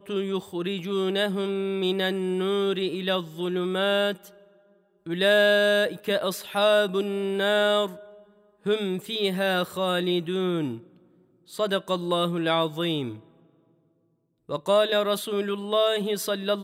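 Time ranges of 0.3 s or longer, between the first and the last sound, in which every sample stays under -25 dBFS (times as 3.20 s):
4.12–5.11 s
7.86–8.66 s
10.71–11.59 s
13.08–14.51 s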